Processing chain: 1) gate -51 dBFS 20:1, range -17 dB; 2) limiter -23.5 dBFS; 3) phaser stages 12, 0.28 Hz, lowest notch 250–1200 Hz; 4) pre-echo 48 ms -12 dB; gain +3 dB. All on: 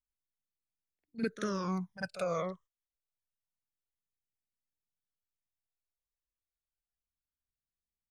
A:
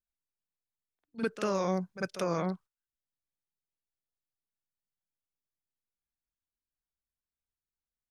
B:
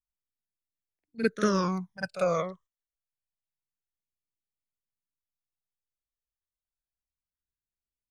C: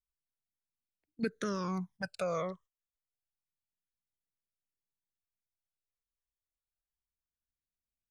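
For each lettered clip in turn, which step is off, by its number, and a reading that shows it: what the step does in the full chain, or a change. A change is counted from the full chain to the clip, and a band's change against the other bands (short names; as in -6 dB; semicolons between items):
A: 3, loudness change +3.5 LU; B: 2, mean gain reduction 4.5 dB; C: 4, momentary loudness spread change -3 LU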